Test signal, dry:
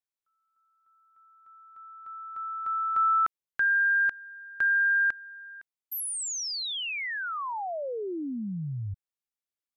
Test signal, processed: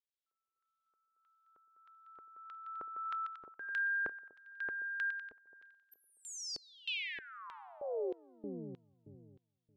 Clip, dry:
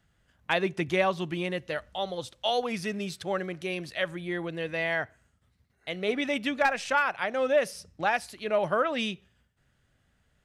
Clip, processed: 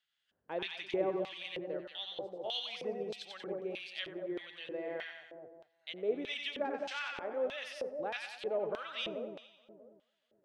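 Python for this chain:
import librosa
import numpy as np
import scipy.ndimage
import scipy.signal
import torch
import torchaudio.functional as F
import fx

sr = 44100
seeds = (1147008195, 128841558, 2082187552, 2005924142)

y = fx.echo_split(x, sr, split_hz=840.0, low_ms=213, high_ms=92, feedback_pct=52, wet_db=-3.5)
y = fx.filter_lfo_bandpass(y, sr, shape='square', hz=1.6, low_hz=420.0, high_hz=3400.0, q=2.3)
y = F.gain(torch.from_numpy(y), -3.0).numpy()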